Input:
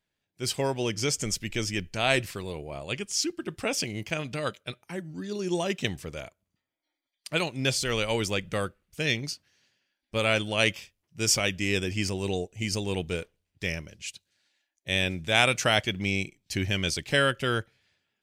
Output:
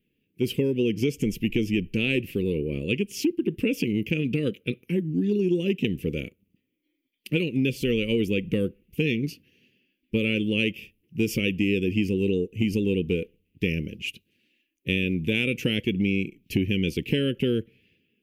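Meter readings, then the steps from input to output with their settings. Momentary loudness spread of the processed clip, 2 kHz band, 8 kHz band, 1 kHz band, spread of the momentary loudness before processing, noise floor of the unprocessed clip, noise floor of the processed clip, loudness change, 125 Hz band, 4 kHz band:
6 LU, −2.0 dB, −13.0 dB, below −20 dB, 14 LU, −84 dBFS, −76 dBFS, +2.0 dB, +4.5 dB, −4.0 dB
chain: drawn EQ curve 110 Hz 0 dB, 230 Hz +10 dB, 490 Hz +4 dB, 690 Hz −30 dB, 1,400 Hz −22 dB, 2,700 Hz +4 dB, 4,000 Hz −15 dB, 8,300 Hz −18 dB, 12,000 Hz −1 dB
downward compressor 5 to 1, threshold −29 dBFS, peak gain reduction 11.5 dB
level +8 dB

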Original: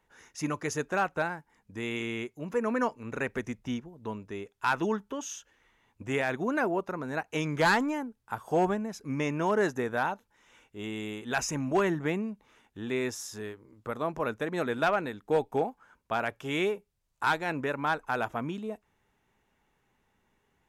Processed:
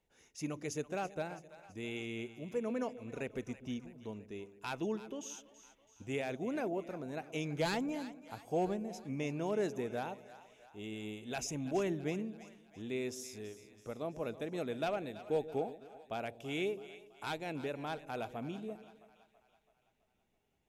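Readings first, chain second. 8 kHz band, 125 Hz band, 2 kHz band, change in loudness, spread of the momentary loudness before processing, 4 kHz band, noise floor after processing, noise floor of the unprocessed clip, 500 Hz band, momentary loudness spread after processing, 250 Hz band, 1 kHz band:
−7.0 dB, −6.5 dB, −13.5 dB, −8.5 dB, 13 LU, −7.0 dB, −76 dBFS, −75 dBFS, −7.0 dB, 14 LU, −7.0 dB, −12.0 dB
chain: flat-topped bell 1,300 Hz −9.5 dB 1.3 octaves
on a send: echo with a time of its own for lows and highs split 620 Hz, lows 130 ms, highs 330 ms, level −14.5 dB
on the sum: level −7 dB

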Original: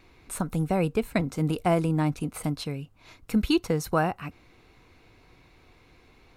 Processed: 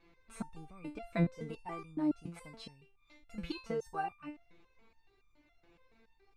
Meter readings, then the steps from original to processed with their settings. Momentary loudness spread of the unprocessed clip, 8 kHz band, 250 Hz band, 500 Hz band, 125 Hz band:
14 LU, −20.0 dB, −11.5 dB, −14.0 dB, −13.5 dB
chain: low-pass filter 8,800 Hz 12 dB per octave
high-shelf EQ 4,800 Hz −9.5 dB
step-sequenced resonator 7.1 Hz 170–1,200 Hz
level +4.5 dB

